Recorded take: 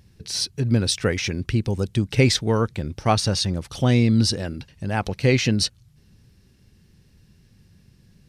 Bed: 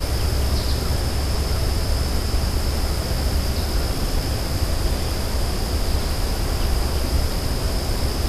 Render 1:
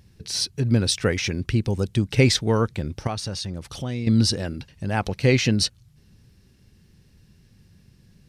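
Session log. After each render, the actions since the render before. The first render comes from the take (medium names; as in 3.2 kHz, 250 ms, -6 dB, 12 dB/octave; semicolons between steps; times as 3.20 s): 3.07–4.07 s: compression 2:1, threshold -33 dBFS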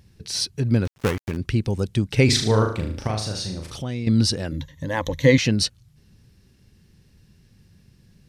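0.85–1.37 s: dead-time distortion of 0.29 ms; 2.25–3.77 s: flutter echo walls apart 6.4 m, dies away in 0.5 s; 4.51–5.38 s: rippled EQ curve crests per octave 1.1, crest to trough 16 dB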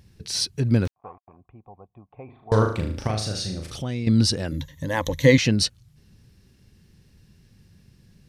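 0.91–2.52 s: cascade formant filter a; 3.11–3.78 s: peaking EQ 970 Hz -9.5 dB 0.27 oct; 4.48–5.37 s: treble shelf 8.5 kHz +10 dB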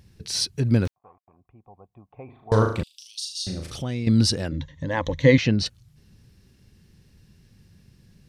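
0.99–2.22 s: fade in, from -13 dB; 2.83–3.47 s: steep high-pass 2.9 kHz 72 dB/octave; 4.48–5.66 s: distance through air 140 m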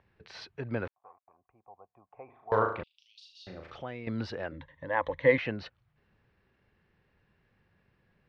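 Bessel low-pass 3.2 kHz, order 4; three-band isolator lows -18 dB, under 490 Hz, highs -19 dB, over 2.4 kHz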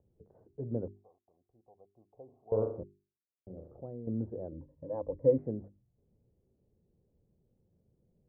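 inverse Chebyshev low-pass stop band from 3.2 kHz, stop band 80 dB; hum notches 50/100/150/200/250/300/350/400 Hz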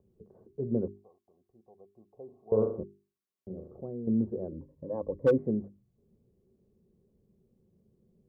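hard clipper -19.5 dBFS, distortion -17 dB; small resonant body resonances 210/380/1100 Hz, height 10 dB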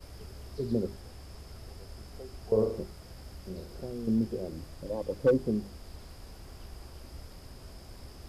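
add bed -25 dB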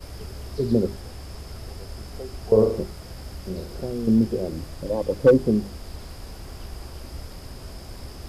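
trim +9 dB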